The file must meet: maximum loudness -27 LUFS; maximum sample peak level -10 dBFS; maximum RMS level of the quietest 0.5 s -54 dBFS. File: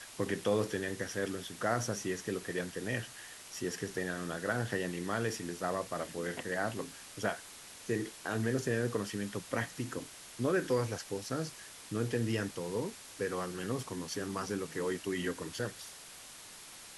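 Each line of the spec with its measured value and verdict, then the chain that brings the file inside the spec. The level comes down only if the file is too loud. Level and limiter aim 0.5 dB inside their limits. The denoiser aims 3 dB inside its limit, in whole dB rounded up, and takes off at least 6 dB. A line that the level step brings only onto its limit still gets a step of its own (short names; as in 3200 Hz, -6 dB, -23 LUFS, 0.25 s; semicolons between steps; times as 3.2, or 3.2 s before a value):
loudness -36.5 LUFS: OK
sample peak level -18.0 dBFS: OK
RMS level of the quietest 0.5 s -51 dBFS: fail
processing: denoiser 6 dB, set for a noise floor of -51 dBFS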